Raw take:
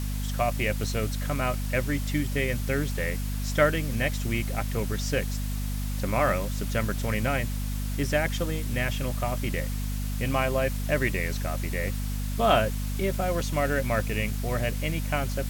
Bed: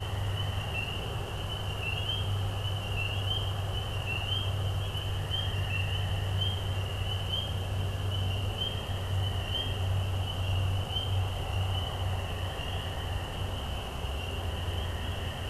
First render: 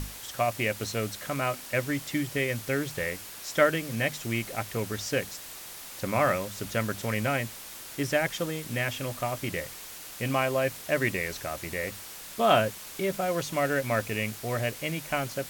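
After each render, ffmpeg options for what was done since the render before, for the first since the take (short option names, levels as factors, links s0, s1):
-af "bandreject=f=50:t=h:w=6,bandreject=f=100:t=h:w=6,bandreject=f=150:t=h:w=6,bandreject=f=200:t=h:w=6,bandreject=f=250:t=h:w=6"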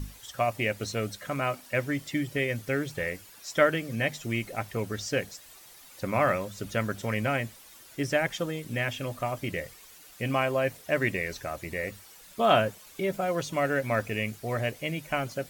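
-af "afftdn=nr=11:nf=-43"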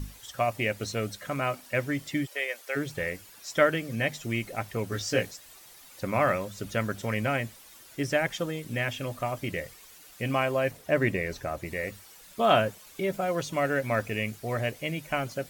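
-filter_complex "[0:a]asplit=3[s0][s1][s2];[s0]afade=t=out:st=2.25:d=0.02[s3];[s1]highpass=f=530:w=0.5412,highpass=f=530:w=1.3066,afade=t=in:st=2.25:d=0.02,afade=t=out:st=2.75:d=0.02[s4];[s2]afade=t=in:st=2.75:d=0.02[s5];[s3][s4][s5]amix=inputs=3:normalize=0,asettb=1/sr,asplit=3[s6][s7][s8];[s6]atrim=end=4.904[s9];[s7]atrim=start=4.9:end=5.31,asetpts=PTS-STARTPTS,afade=t=in:d=0.004:c=qsin,afade=t=out:st=0.406:d=0.004:c=qsin,asplit=2[s10][s11];[s11]adelay=17,volume=0.794[s12];[s10][s12]amix=inputs=2:normalize=0,atrim=end_sample=18081[s13];[s8]atrim=start=5.306[s14];[s9][s13]acrossfade=d=0.004:c1=hsin:c2=qsin[s15];[s15][s14]acrossfade=d=0.004:c1=qsin:c2=hsin,asettb=1/sr,asplit=3[s16][s17][s18];[s16]atrim=end=10.714[s19];[s17]atrim=start=10.71:end=11.66,asetpts=PTS-STARTPTS,afade=t=in:d=0.004:c=qsin,afade=t=out:st=0.946:d=0.004:c=qsin,tiltshelf=f=1400:g=3.5[s20];[s18]atrim=start=11.656[s21];[s19][s20]acrossfade=d=0.004:c1=hsin:c2=qsin[s22];[s22][s21]acrossfade=d=0.004:c1=qsin:c2=hsin"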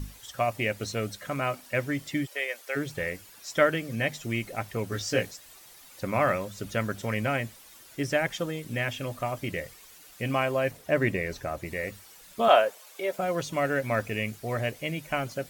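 -filter_complex "[0:a]asettb=1/sr,asplit=3[s0][s1][s2];[s0]atrim=end=12.484[s3];[s1]atrim=start=12.48:end=13.19,asetpts=PTS-STARTPTS,afade=t=in:d=0.004:c=qsin,afade=t=out:st=0.706:d=0.004:c=qsin,highpass=f=560:t=q:w=1.5[s4];[s2]atrim=start=13.186[s5];[s3][s4]acrossfade=d=0.004:c1=hsin:c2=qsin[s6];[s6][s5]acrossfade=d=0.004:c1=qsin:c2=hsin"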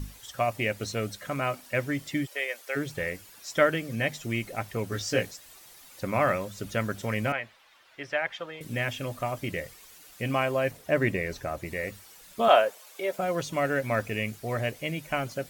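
-filter_complex "[0:a]asettb=1/sr,asplit=3[s0][s1][s2];[s0]atrim=end=7.324[s3];[s1]atrim=start=7.32:end=8.61,asetpts=PTS-STARTPTS,afade=t=in:d=0.004:c=qsin,afade=t=out:st=1.286:d=0.004:c=qsin,acrossover=split=560 3900:gain=0.158 1 0.0794[s4][s5][s6];[s4][s5][s6]amix=inputs=3:normalize=0[s7];[s2]atrim=start=8.606[s8];[s3][s7]acrossfade=d=0.004:c1=hsin:c2=qsin[s9];[s9][s8]acrossfade=d=0.004:c1=qsin:c2=hsin"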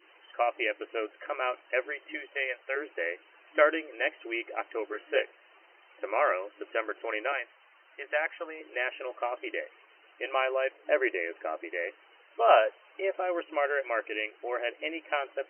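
-af "adynamicequalizer=threshold=0.0141:dfrequency=740:dqfactor=1:tfrequency=740:tqfactor=1:attack=5:release=100:ratio=0.375:range=3:mode=cutabove:tftype=bell,afftfilt=real='re*between(b*sr/4096,310,3100)':imag='im*between(b*sr/4096,310,3100)':win_size=4096:overlap=0.75"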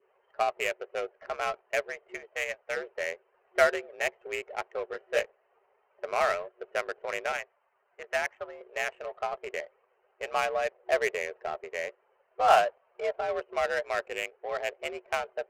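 -af "afreqshift=60,adynamicsmooth=sensitivity=3.5:basefreq=700"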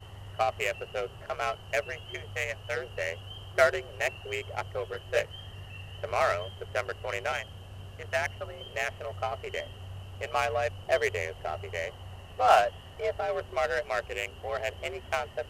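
-filter_complex "[1:a]volume=0.237[s0];[0:a][s0]amix=inputs=2:normalize=0"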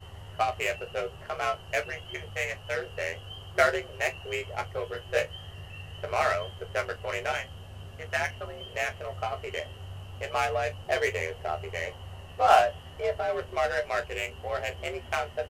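-filter_complex "[0:a]asplit=2[s0][s1];[s1]adelay=25,volume=0.224[s2];[s0][s2]amix=inputs=2:normalize=0,asplit=2[s3][s4];[s4]aecho=0:1:13|42:0.501|0.15[s5];[s3][s5]amix=inputs=2:normalize=0"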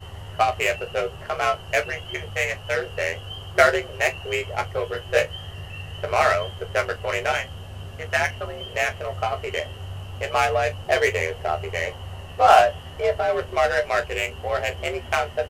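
-af "volume=2.24,alimiter=limit=0.708:level=0:latency=1"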